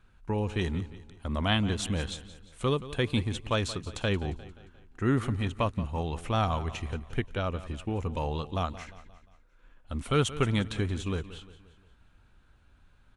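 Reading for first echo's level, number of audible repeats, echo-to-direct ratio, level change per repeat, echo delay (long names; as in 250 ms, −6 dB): −15.5 dB, 4, −14.5 dB, −6.5 dB, 176 ms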